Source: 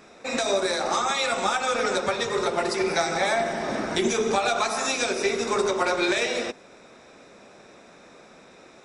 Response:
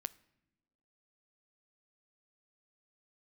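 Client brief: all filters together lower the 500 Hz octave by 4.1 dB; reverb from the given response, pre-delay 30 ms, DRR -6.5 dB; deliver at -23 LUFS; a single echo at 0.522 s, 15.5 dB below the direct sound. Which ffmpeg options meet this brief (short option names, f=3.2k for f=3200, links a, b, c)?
-filter_complex "[0:a]equalizer=f=500:t=o:g=-5.5,aecho=1:1:522:0.168,asplit=2[a][b];[1:a]atrim=start_sample=2205,adelay=30[c];[b][c]afir=irnorm=-1:irlink=0,volume=9dB[d];[a][d]amix=inputs=2:normalize=0,volume=-4.5dB"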